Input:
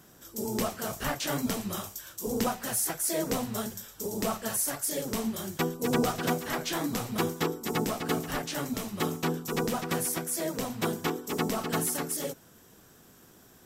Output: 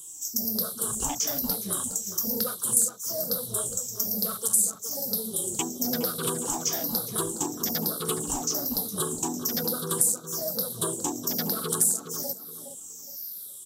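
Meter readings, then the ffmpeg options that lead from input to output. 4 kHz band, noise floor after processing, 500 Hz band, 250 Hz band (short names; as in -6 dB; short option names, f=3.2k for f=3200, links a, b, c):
+3.0 dB, -43 dBFS, -2.5 dB, -2.5 dB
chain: -filter_complex "[0:a]afftfilt=real='re*pow(10,20/40*sin(2*PI*(0.66*log(max(b,1)*sr/1024/100)/log(2)-(-1.1)*(pts-256)/sr)))':imag='im*pow(10,20/40*sin(2*PI*(0.66*log(max(b,1)*sr/1024/100)/log(2)-(-1.1)*(pts-256)/sr)))':win_size=1024:overlap=0.75,afwtdn=0.0282,highshelf=f=2.8k:g=5.5,acrossover=split=1400[a][b];[b]aexciter=amount=14.7:drive=3.8:freq=3.7k[c];[a][c]amix=inputs=2:normalize=0,equalizer=f=1.9k:t=o:w=0.37:g=-6.5,acompressor=threshold=-29dB:ratio=4,asplit=2[d][e];[e]adelay=415,lowpass=f=1.7k:p=1,volume=-8dB,asplit=2[f][g];[g]adelay=415,lowpass=f=1.7k:p=1,volume=0.3,asplit=2[h][i];[i]adelay=415,lowpass=f=1.7k:p=1,volume=0.3,asplit=2[j][k];[k]adelay=415,lowpass=f=1.7k:p=1,volume=0.3[l];[f][h][j][l]amix=inputs=4:normalize=0[m];[d][m]amix=inputs=2:normalize=0,volume=2dB"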